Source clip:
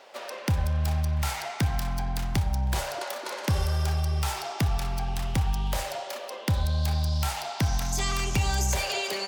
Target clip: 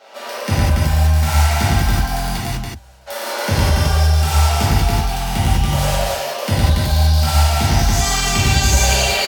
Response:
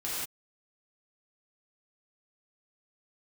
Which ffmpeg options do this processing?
-filter_complex "[0:a]asplit=3[link_01][link_02][link_03];[link_01]afade=type=out:start_time=2.35:duration=0.02[link_04];[link_02]agate=range=-30dB:threshold=-20dB:ratio=16:detection=peak,afade=type=in:start_time=2.35:duration=0.02,afade=type=out:start_time=3.06:duration=0.02[link_05];[link_03]afade=type=in:start_time=3.06:duration=0.02[link_06];[link_04][link_05][link_06]amix=inputs=3:normalize=0,aecho=1:1:110.8|282.8:1|0.794[link_07];[1:a]atrim=start_sample=2205,asetrate=83790,aresample=44100[link_08];[link_07][link_08]afir=irnorm=-1:irlink=0,volume=9dB"

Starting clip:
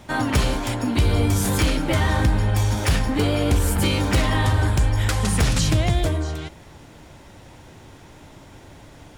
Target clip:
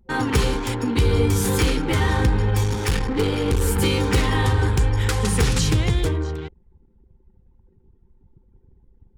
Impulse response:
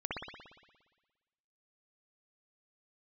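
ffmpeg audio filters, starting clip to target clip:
-filter_complex "[0:a]asettb=1/sr,asplit=3[link_01][link_02][link_03];[link_01]atrim=end=2.644[link_04];[link_02]atrim=start=2.64:end=3.61,asetpts=PTS-STARTPTS,afade=type=in:duration=0.004:curve=qsin,afade=type=out:start_time=0.966:duration=0.004:curve=qsin,aeval=exprs='clip(val(0),-1,0.075)':channel_layout=same[link_05];[link_03]atrim=start=3.606[link_06];[link_04][link_05]acrossfade=duration=0.004:curve1=hsin:curve2=qsin[link_07];[link_07][link_06]acrossfade=duration=0.004:curve1=qsin:curve2=hsin,anlmdn=10,superequalizer=7b=2:8b=0.282"

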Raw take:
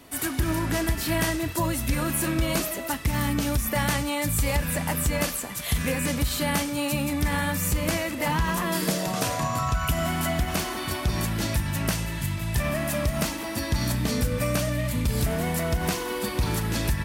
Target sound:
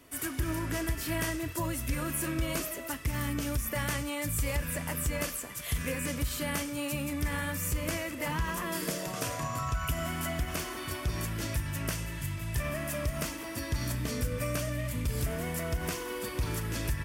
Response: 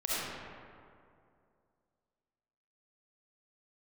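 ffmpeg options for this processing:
-af "equalizer=frequency=200:width_type=o:width=0.33:gain=-9,equalizer=frequency=800:width_type=o:width=0.33:gain=-8,equalizer=frequency=4000:width_type=o:width=0.33:gain=-6,volume=-6dB"

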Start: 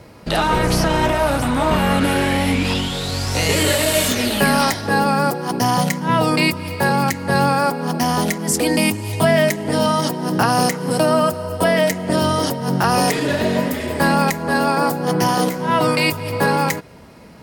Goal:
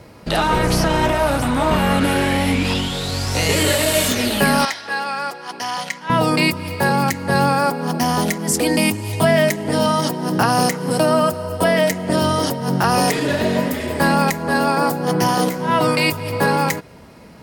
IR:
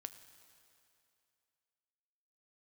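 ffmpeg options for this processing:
-filter_complex "[0:a]asettb=1/sr,asplit=3[link_01][link_02][link_03];[link_01]atrim=end=4.654[link_04];[link_02]atrim=start=4.65:end=6.1,asetpts=PTS-STARTPTS,afade=type=in:duration=0.004:curve=qsin,afade=type=out:start_time=1.446:duration=0.004:curve=qsin,bandpass=frequency=2600:width_type=q:width=0.7:csg=0[link_05];[link_03]atrim=start=6.096[link_06];[link_04][link_05]acrossfade=duration=0.004:curve1=hsin:curve2=qsin[link_07];[link_07][link_06]acrossfade=duration=0.004:curve1=qsin:curve2=hsin"

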